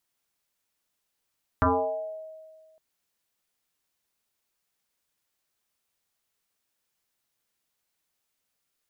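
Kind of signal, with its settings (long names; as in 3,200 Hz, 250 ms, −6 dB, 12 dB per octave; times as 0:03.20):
two-operator FM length 1.16 s, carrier 634 Hz, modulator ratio 0.29, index 4.7, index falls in 0.96 s exponential, decay 1.72 s, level −17 dB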